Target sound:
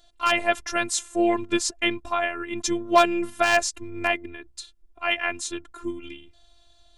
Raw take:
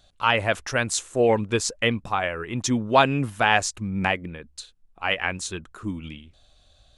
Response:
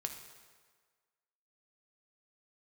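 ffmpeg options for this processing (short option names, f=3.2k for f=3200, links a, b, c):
-af "aeval=exprs='0.422*(abs(mod(val(0)/0.422+3,4)-2)-1)':c=same,afftfilt=real='hypot(re,im)*cos(PI*b)':imag='0':win_size=512:overlap=0.75,volume=3.5dB"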